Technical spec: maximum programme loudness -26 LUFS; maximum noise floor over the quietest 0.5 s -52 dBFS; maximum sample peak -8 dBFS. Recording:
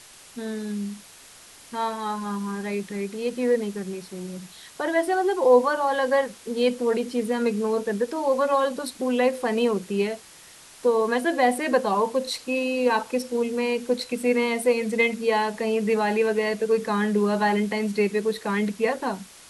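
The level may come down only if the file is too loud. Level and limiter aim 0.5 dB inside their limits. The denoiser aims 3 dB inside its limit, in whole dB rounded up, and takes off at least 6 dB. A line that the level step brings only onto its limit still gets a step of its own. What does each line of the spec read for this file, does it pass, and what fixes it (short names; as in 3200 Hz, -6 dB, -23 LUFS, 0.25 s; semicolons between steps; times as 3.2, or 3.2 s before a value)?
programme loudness -24.5 LUFS: fail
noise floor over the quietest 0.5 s -48 dBFS: fail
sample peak -6.5 dBFS: fail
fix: denoiser 6 dB, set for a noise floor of -48 dBFS; gain -2 dB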